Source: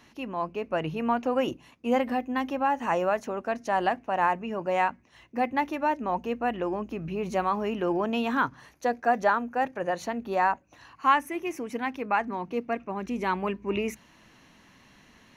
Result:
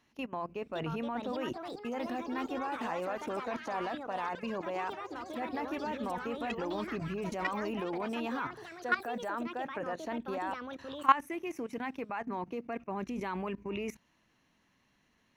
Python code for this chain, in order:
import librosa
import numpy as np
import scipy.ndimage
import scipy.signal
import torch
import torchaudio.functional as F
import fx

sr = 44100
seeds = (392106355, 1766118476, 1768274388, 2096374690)

y = fx.level_steps(x, sr, step_db=18)
y = fx.echo_pitch(y, sr, ms=613, semitones=5, count=3, db_per_echo=-6.0)